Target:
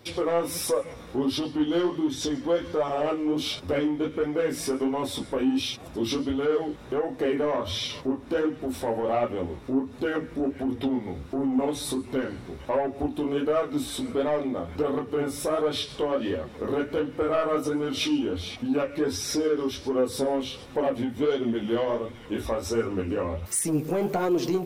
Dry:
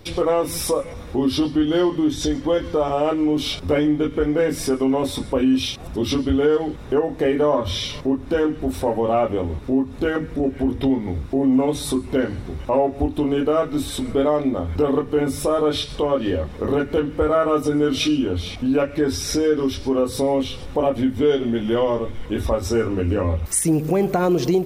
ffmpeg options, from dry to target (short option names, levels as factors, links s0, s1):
-af "highpass=f=180:p=1,asoftclip=type=tanh:threshold=0.2,flanger=delay=7.9:depth=9.8:regen=38:speed=1.4:shape=sinusoidal"